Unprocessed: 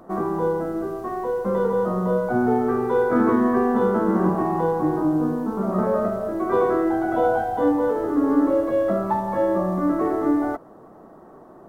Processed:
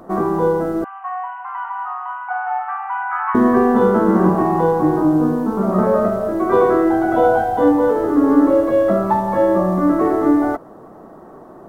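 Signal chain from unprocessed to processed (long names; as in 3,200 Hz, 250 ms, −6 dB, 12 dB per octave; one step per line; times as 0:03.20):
0:00.84–0:03.35: linear-phase brick-wall band-pass 710–3,100 Hz
level +6 dB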